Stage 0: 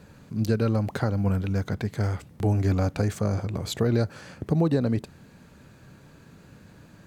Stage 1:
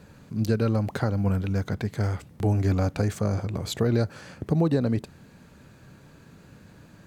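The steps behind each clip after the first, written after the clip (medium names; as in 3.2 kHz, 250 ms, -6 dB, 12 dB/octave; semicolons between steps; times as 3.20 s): no audible change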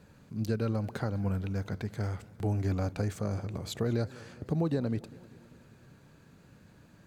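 modulated delay 198 ms, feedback 64%, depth 145 cents, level -21 dB; trim -7 dB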